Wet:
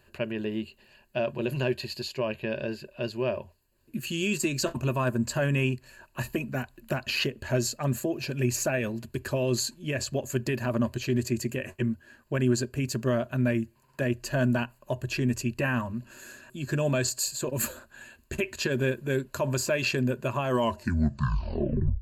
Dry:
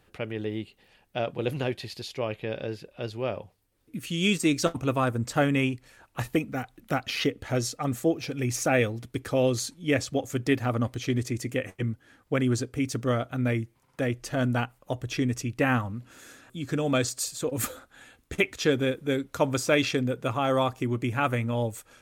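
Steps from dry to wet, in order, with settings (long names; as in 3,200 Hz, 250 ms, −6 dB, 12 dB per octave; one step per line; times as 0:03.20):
turntable brake at the end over 1.55 s
brickwall limiter −19 dBFS, peak gain reduction 9.5 dB
EQ curve with evenly spaced ripples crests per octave 1.4, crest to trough 12 dB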